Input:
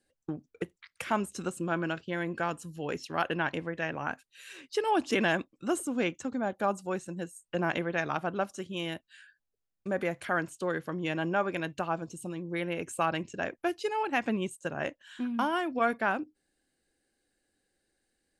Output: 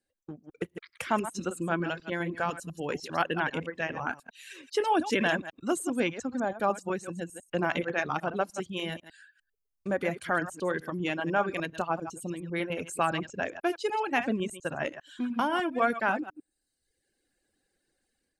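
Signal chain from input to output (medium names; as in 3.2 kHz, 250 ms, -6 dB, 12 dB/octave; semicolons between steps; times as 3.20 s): chunks repeated in reverse 100 ms, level -7 dB; reverb removal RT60 0.88 s; level rider gain up to 10 dB; trim -8 dB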